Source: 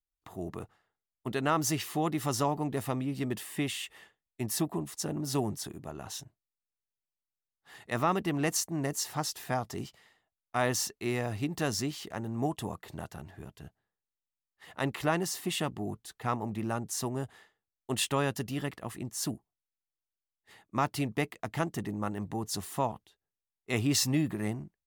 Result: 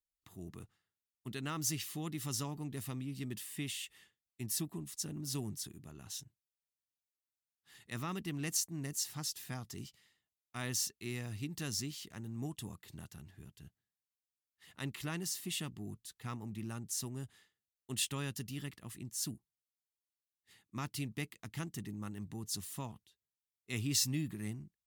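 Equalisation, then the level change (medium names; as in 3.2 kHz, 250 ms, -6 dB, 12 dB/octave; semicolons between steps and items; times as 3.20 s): amplifier tone stack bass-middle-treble 6-0-2; bass shelf 84 Hz -11 dB; peaking EQ 1.6 kHz -2.5 dB 1.4 oct; +12.0 dB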